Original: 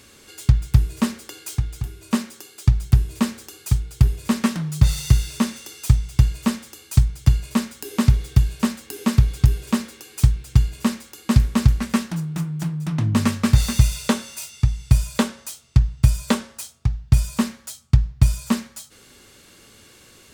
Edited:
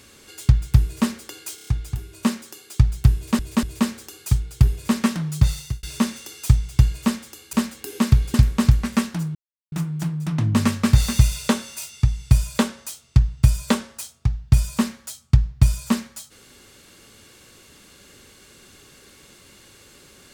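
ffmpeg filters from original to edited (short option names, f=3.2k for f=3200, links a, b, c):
-filter_complex "[0:a]asplit=11[a][b][c][d][e][f][g][h][i][j][k];[a]atrim=end=1.582[l];[b]atrim=start=1.548:end=1.582[m];[c]atrim=start=1.548:end=1.582[n];[d]atrim=start=1.548:end=1.582[o];[e]atrim=start=1.548:end=3.272[p];[f]atrim=start=3.028:end=3.272[q];[g]atrim=start=3.028:end=5.23,asetpts=PTS-STARTPTS,afade=t=out:st=1.722:d=0.48[r];[h]atrim=start=5.23:end=6.932,asetpts=PTS-STARTPTS,afade=t=in:d=0.004:c=hsin[s];[i]atrim=start=8.588:end=9.402[t];[j]atrim=start=11.308:end=12.32,asetpts=PTS-STARTPTS,afade=t=out:st=1.008:d=0.004:c=hsin,apad=pad_dur=0.37[u];[k]atrim=start=12.32,asetpts=PTS-STARTPTS,afade=t=in:d=0.004:c=hsin[v];[l][m]acrossfade=d=0.004:c1=hsin:c2=hsin[w];[w][n]acrossfade=d=0.004:c1=hsin:c2=hsin[x];[x][o]acrossfade=d=0.004:c1=hsin:c2=hsin[y];[y][p]acrossfade=d=0.004:c1=hsin:c2=hsin[z];[z][q]acrossfade=d=0.004:c1=hsin:c2=hsin[aa];[r][s]concat=n=2:v=0:a=1[ab];[aa][ab]acrossfade=d=0.004:c1=hsin:c2=hsin[ac];[ac][t]acrossfade=d=0.004:c1=hsin:c2=hsin[ad];[u][v]concat=n=2:v=0:a=1[ae];[ad][ae]acrossfade=d=0.004:c1=hsin:c2=hsin"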